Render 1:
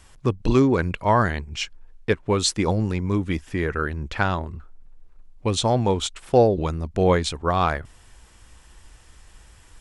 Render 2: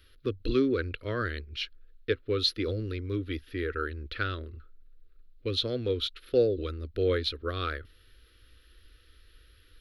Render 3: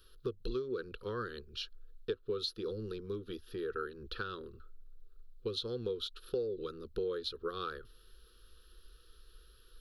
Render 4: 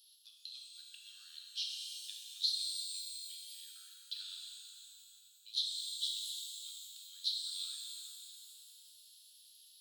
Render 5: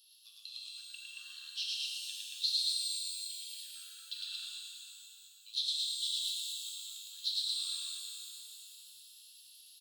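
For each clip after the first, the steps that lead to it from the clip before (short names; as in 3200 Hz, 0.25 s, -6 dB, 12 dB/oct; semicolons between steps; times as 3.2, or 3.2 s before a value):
EQ curve 100 Hz 0 dB, 170 Hz -18 dB, 260 Hz 0 dB, 490 Hz +3 dB, 870 Hz -29 dB, 1300 Hz +2 dB, 2200 Hz -1 dB, 4100 Hz +8 dB, 8100 Hz -27 dB, 12000 Hz +11 dB; gain -8 dB
compressor 6:1, threshold -33 dBFS, peak gain reduction 14 dB; fixed phaser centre 420 Hz, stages 8; gain +2 dB
inverse Chebyshev high-pass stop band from 830 Hz, stop band 70 dB; shimmer reverb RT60 3 s, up +12 st, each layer -8 dB, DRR -2 dB; gain +5 dB
small resonant body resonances 1100/2700 Hz, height 14 dB, ringing for 45 ms; on a send: loudspeakers at several distances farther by 37 m -1 dB, 78 m -3 dB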